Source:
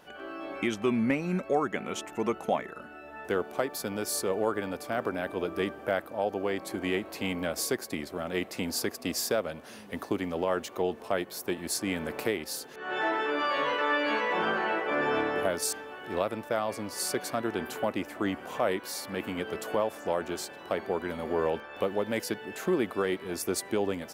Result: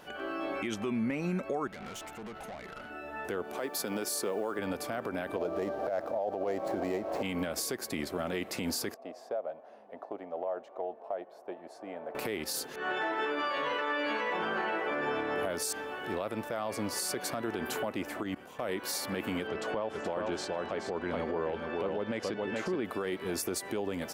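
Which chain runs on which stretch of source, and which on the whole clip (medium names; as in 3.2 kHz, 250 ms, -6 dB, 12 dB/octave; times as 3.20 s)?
1.67–2.90 s: comb 1.4 ms, depth 38% + compression 10:1, threshold -33 dBFS + valve stage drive 43 dB, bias 0.65
3.57–4.59 s: high-pass 180 Hz + modulation noise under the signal 34 dB
5.36–7.23 s: median filter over 15 samples + peaking EQ 640 Hz +13 dB 0.96 oct + compressor with a negative ratio -23 dBFS
8.94–12.15 s: band-pass filter 670 Hz, Q 3.9 + compression 3:1, threshold -34 dBFS
18.23–18.70 s: peaking EQ 880 Hz -4 dB 2.1 oct + level held to a coarse grid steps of 18 dB
19.47–22.85 s: distance through air 98 m + delay 426 ms -6.5 dB
whole clip: compression, threshold -30 dBFS; peak limiter -27.5 dBFS; trim +3.5 dB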